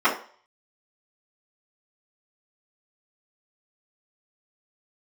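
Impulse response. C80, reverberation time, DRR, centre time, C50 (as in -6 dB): 14.0 dB, 0.45 s, -14.0 dB, 21 ms, 9.0 dB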